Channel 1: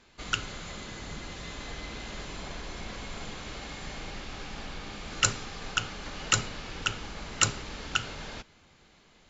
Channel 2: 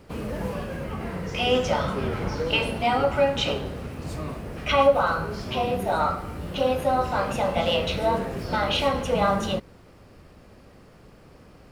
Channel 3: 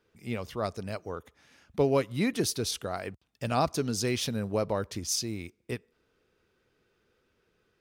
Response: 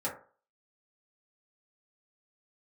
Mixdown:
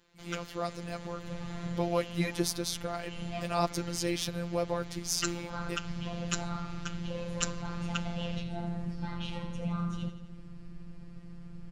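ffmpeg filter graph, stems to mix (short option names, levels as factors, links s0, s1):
-filter_complex "[0:a]aeval=exprs='val(0)*sin(2*PI*85*n/s)':c=same,volume=0.668[s0];[1:a]lowpass=f=9400:w=0.5412,lowpass=f=9400:w=1.3066,asubboost=boost=9.5:cutoff=170,acompressor=threshold=0.0447:ratio=3,adelay=500,volume=0.631,asplit=2[s1][s2];[s2]volume=0.299[s3];[2:a]volume=1.12,asplit=2[s4][s5];[s5]apad=whole_len=538882[s6];[s1][s6]sidechaincompress=threshold=0.00562:ratio=8:attack=11:release=122[s7];[s3]aecho=0:1:84|168|252|336|420|504|588|672|756:1|0.57|0.325|0.185|0.106|0.0602|0.0343|0.0195|0.0111[s8];[s0][s7][s4][s8]amix=inputs=4:normalize=0,afftfilt=real='hypot(re,im)*cos(PI*b)':imag='0':win_size=1024:overlap=0.75"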